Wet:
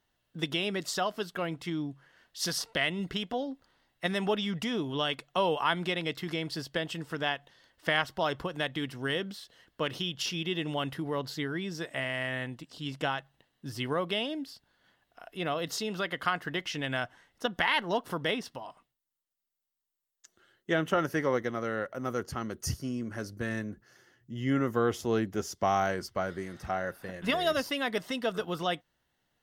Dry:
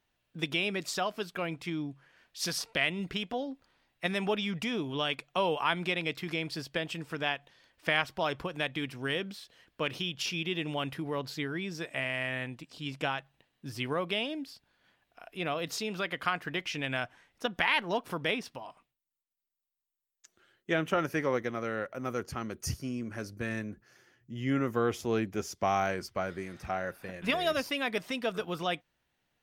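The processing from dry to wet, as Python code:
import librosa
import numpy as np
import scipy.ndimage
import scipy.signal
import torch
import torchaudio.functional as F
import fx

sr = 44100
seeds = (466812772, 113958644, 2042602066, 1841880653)

y = fx.notch(x, sr, hz=2400.0, q=5.8)
y = y * librosa.db_to_amplitude(1.5)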